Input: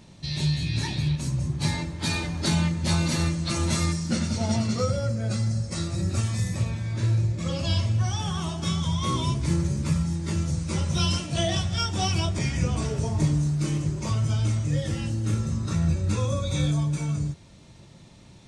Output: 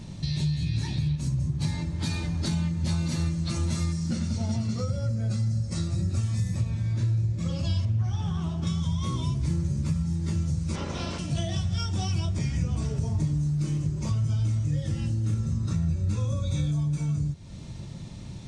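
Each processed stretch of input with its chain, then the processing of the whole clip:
0:07.85–0:08.67: high-shelf EQ 3,900 Hz −11.5 dB + highs frequency-modulated by the lows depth 0.16 ms
0:10.74–0:11.18: ceiling on every frequency bin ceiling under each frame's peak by 28 dB + head-to-tape spacing loss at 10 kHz 24 dB
whole clip: high-shelf EQ 6,200 Hz −12 dB; downward compressor 3 to 1, threshold −40 dBFS; bass and treble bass +9 dB, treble +9 dB; level +3.5 dB

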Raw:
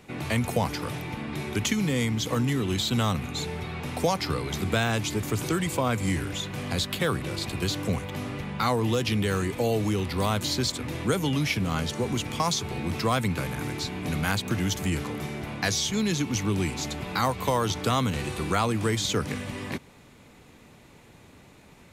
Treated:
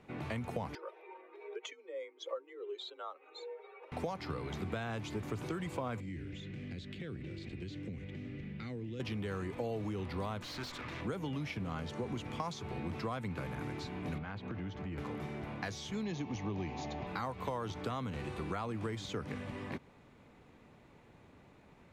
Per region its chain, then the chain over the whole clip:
0:00.75–0:03.92: expanding power law on the bin magnitudes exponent 1.8 + frequency shifter +39 Hz + Chebyshev high-pass with heavy ripple 370 Hz, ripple 3 dB
0:06.00–0:09.00: drawn EQ curve 350 Hz 0 dB, 990 Hz −24 dB, 2,000 Hz −1 dB, 7,800 Hz −8 dB, 12,000 Hz −19 dB + downward compressor 4 to 1, threshold −32 dBFS
0:10.42–0:11.01: flat-topped bell 2,600 Hz +10 dB 2.9 octaves + tube saturation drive 28 dB, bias 0.6 + mains-hum notches 50/100/150/200/250/300/350/400/450/500 Hz
0:14.18–0:14.98: downward compressor 5 to 1, threshold −29 dBFS + high-frequency loss of the air 210 metres
0:16.03–0:17.07: linear-phase brick-wall low-pass 7,100 Hz + parametric band 730 Hz +7.5 dB 0.59 octaves + notch filter 1,400 Hz, Q 5.1
whole clip: downward compressor, threshold −27 dBFS; low-pass filter 1,200 Hz 6 dB per octave; low-shelf EQ 500 Hz −4.5 dB; level −3.5 dB

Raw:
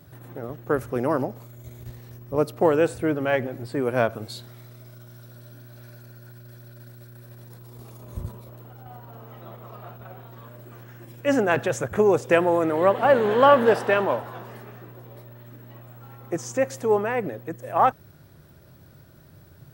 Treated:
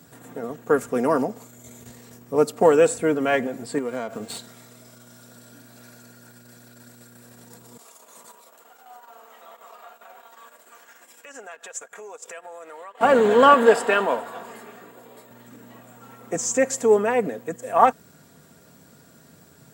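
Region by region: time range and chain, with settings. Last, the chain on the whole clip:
0:03.78–0:04.39: downward compressor 8 to 1, threshold −27 dBFS + windowed peak hold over 5 samples
0:07.77–0:13.01: high-pass filter 740 Hz + downward compressor 4 to 1, threshold −42 dBFS + transient designer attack −3 dB, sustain −10 dB
0:13.54–0:15.31: high-pass filter 290 Hz 6 dB per octave + notch filter 5,800 Hz, Q 7.1
whole clip: high-pass filter 150 Hz 12 dB per octave; parametric band 7,500 Hz +13.5 dB 0.45 octaves; comb filter 4.3 ms, depth 55%; level +2 dB

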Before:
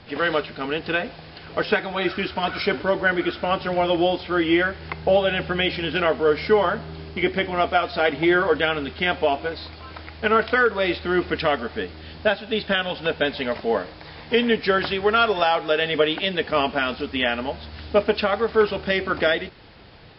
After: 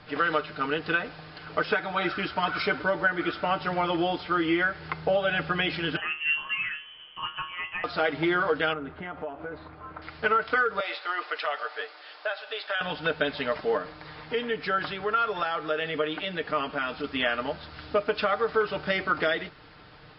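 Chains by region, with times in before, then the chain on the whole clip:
0:05.96–0:07.84: tuned comb filter 150 Hz, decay 0.34 s, mix 80% + voice inversion scrambler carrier 3,200 Hz
0:08.73–0:10.02: low-pass filter 1,400 Hz + downward compressor 10 to 1, threshold −28 dBFS
0:10.80–0:12.81: high-pass filter 540 Hz 24 dB per octave + downward compressor 4 to 1, threshold −24 dBFS
0:13.77–0:17.04: downward compressor 1.5 to 1, threshold −30 dBFS + high-frequency loss of the air 53 metres
whole clip: parametric band 1,300 Hz +8 dB 0.72 octaves; comb filter 6.6 ms, depth 48%; downward compressor, threshold −15 dBFS; level −5.5 dB

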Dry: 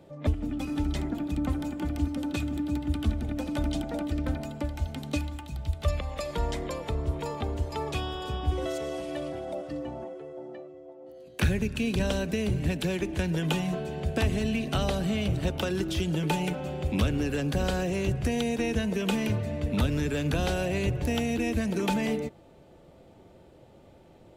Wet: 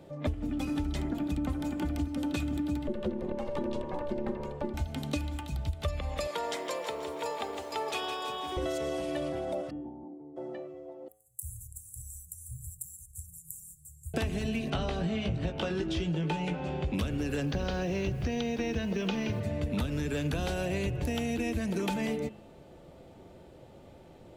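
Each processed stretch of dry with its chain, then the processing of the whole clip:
0:02.87–0:04.74: low-pass filter 2,000 Hz 6 dB per octave + ring modulation 290 Hz
0:06.27–0:08.57: high-pass filter 460 Hz + feedback echo at a low word length 161 ms, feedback 55%, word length 10 bits, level −8 dB
0:09.69–0:10.36: ceiling on every frequency bin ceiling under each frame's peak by 15 dB + formant resonators in series u
0:11.08–0:14.14: spectral tilt +3 dB per octave + downward compressor 3 to 1, threshold −33 dBFS + Chebyshev band-stop filter 120–7,600 Hz, order 5
0:14.70–0:16.94: high-frequency loss of the air 100 metres + double-tracking delay 18 ms −6 dB
0:17.45–0:19.39: Butterworth low-pass 6,300 Hz 72 dB per octave + background noise pink −58 dBFS
whole clip: hum removal 106.5 Hz, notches 31; downward compressor, threshold −30 dBFS; level +2 dB

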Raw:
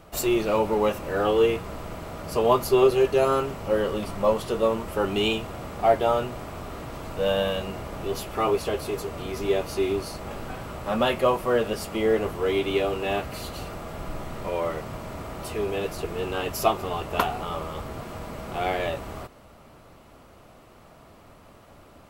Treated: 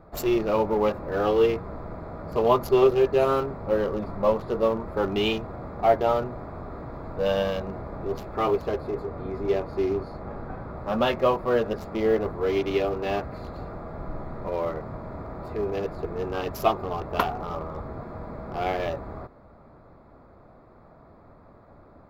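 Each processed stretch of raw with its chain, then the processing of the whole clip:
0:08.78–0:10.77: high-shelf EQ 4,000 Hz −4 dB + double-tracking delay 32 ms −12.5 dB
whole clip: adaptive Wiener filter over 15 samples; parametric band 8,800 Hz −14 dB 0.5 octaves

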